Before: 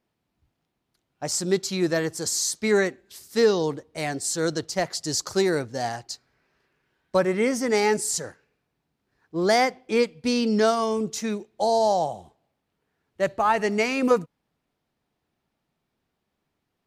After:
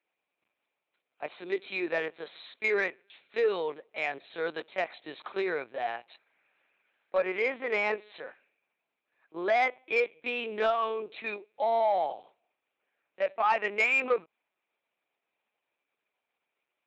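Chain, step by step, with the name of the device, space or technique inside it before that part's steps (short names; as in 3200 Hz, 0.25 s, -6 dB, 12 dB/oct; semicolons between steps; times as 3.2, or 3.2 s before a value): talking toy (LPC vocoder at 8 kHz pitch kept; HPF 500 Hz 12 dB/oct; bell 2400 Hz +11.5 dB 0.25 oct; soft clip -13.5 dBFS, distortion -21 dB); gain -2.5 dB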